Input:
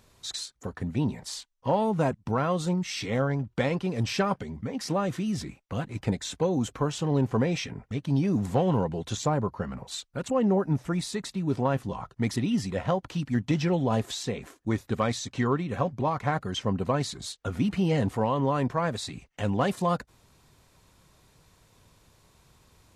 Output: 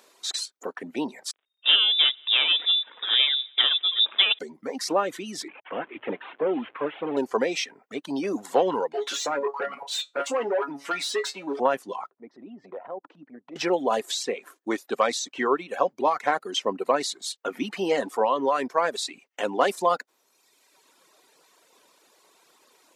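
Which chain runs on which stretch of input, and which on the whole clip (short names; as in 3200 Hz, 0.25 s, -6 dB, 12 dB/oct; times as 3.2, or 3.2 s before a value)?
1.31–4.39 switching dead time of 0.16 ms + multi-head echo 91 ms, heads first and second, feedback 46%, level -22.5 dB + inverted band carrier 3700 Hz
5.48–7.17 delta modulation 16 kbps, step -40.5 dBFS + notches 60/120 Hz
8.93–11.6 resonator 140 Hz, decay 0.21 s, mix 90% + compressor 3:1, threshold -34 dBFS + overdrive pedal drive 24 dB, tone 3000 Hz, clips at -20.5 dBFS
12.1–13.56 LPF 1000 Hz + compressor 10:1, threshold -33 dBFS + transient shaper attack -9 dB, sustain -5 dB
whole clip: reverb removal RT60 1.2 s; HPF 320 Hz 24 dB/oct; gain +6 dB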